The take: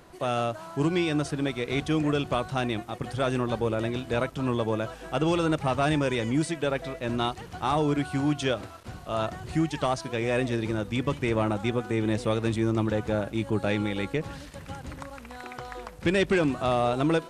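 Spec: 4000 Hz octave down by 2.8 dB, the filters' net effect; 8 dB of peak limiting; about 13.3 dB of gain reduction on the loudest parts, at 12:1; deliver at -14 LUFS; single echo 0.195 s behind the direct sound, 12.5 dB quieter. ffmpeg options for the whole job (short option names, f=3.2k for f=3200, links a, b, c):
-af "equalizer=f=4k:t=o:g=-3.5,acompressor=threshold=-34dB:ratio=12,alimiter=level_in=6dB:limit=-24dB:level=0:latency=1,volume=-6dB,aecho=1:1:195:0.237,volume=26.5dB"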